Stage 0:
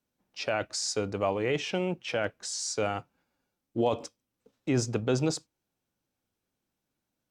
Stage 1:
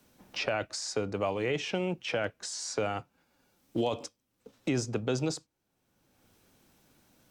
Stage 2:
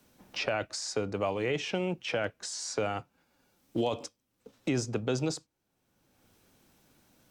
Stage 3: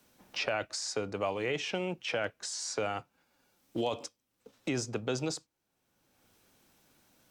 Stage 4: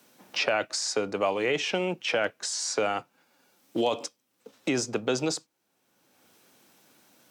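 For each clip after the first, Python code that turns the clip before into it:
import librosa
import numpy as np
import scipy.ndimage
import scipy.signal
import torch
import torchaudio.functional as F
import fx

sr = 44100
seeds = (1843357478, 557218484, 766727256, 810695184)

y1 = fx.band_squash(x, sr, depth_pct=70)
y1 = F.gain(torch.from_numpy(y1), -2.0).numpy()
y2 = y1
y3 = fx.low_shelf(y2, sr, hz=410.0, db=-5.5)
y4 = scipy.signal.sosfilt(scipy.signal.butter(2, 180.0, 'highpass', fs=sr, output='sos'), y3)
y4 = F.gain(torch.from_numpy(y4), 6.5).numpy()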